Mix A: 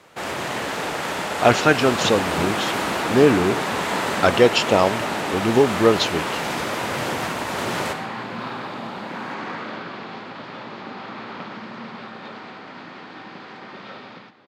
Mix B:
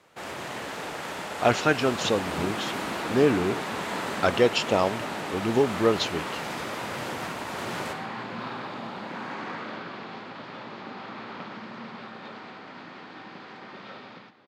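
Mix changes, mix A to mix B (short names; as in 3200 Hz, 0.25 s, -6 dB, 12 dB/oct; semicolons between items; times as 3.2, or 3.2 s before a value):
speech -6.0 dB; first sound -8.5 dB; second sound -4.5 dB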